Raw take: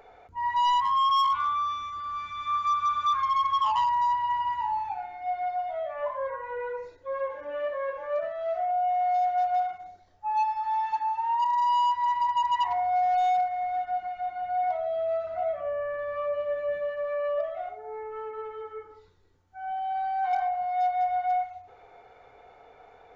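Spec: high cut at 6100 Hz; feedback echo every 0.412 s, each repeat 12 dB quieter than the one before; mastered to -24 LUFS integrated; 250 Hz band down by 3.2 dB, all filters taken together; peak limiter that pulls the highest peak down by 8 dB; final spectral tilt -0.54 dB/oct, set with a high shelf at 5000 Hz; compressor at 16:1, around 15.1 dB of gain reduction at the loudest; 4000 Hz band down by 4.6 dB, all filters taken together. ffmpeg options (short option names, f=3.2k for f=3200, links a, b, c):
-af "lowpass=6.1k,equalizer=f=250:t=o:g=-4.5,equalizer=f=4k:t=o:g=-3,highshelf=f=5k:g=-8,acompressor=threshold=-38dB:ratio=16,alimiter=level_in=15dB:limit=-24dB:level=0:latency=1,volume=-15dB,aecho=1:1:412|824|1236:0.251|0.0628|0.0157,volume=20dB"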